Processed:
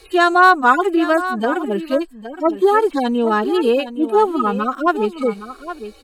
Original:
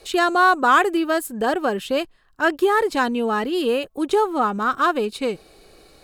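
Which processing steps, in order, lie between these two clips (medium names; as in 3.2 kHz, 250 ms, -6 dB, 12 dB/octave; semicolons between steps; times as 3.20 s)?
harmonic-percussive separation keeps harmonic; on a send: delay 816 ms -12.5 dB; on the sum: trim +5 dB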